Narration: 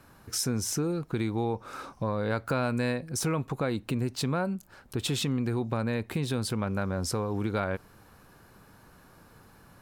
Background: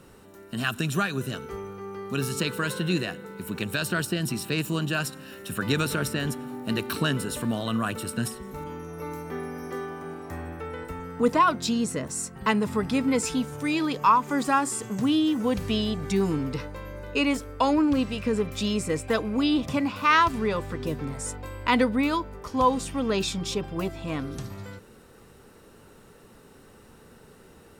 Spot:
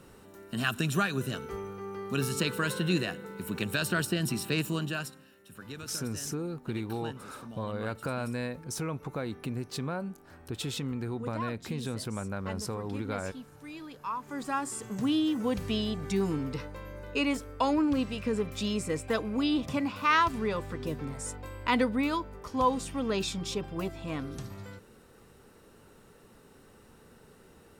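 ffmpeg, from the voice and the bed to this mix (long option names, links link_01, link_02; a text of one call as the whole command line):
ffmpeg -i stem1.wav -i stem2.wav -filter_complex "[0:a]adelay=5550,volume=-5.5dB[link_01];[1:a]volume=11.5dB,afade=type=out:start_time=4.56:duration=0.77:silence=0.158489,afade=type=in:start_time=14.04:duration=1.04:silence=0.211349[link_02];[link_01][link_02]amix=inputs=2:normalize=0" out.wav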